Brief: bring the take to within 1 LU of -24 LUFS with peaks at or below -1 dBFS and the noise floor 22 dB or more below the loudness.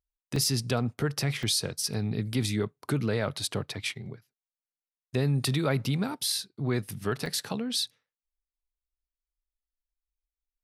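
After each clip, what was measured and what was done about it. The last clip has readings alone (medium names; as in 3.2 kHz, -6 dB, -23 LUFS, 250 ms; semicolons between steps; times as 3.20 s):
dropouts 3; longest dropout 2.6 ms; loudness -29.5 LUFS; peak level -13.5 dBFS; loudness target -24.0 LUFS
-> interpolate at 0.36/1.43/7.26 s, 2.6 ms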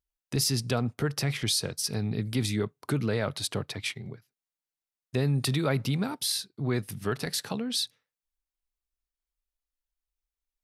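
dropouts 0; loudness -29.5 LUFS; peak level -13.5 dBFS; loudness target -24.0 LUFS
-> trim +5.5 dB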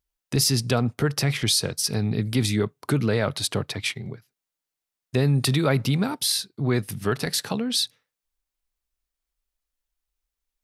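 loudness -24.0 LUFS; peak level -8.0 dBFS; noise floor -87 dBFS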